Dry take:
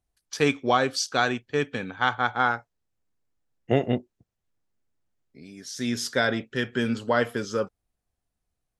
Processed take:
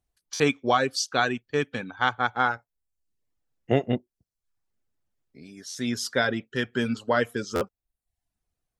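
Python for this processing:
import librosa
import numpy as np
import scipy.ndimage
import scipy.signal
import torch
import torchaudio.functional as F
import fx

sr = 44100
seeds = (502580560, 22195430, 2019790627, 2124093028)

y = fx.dereverb_blind(x, sr, rt60_s=0.58)
y = fx.buffer_glitch(y, sr, at_s=(0.34, 5.69, 7.55), block=512, repeats=4)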